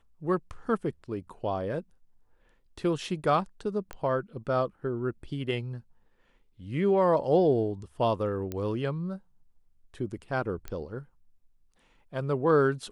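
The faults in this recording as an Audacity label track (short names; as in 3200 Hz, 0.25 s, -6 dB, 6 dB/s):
3.930000	3.930000	pop -24 dBFS
8.520000	8.520000	pop -20 dBFS
10.680000	10.680000	pop -23 dBFS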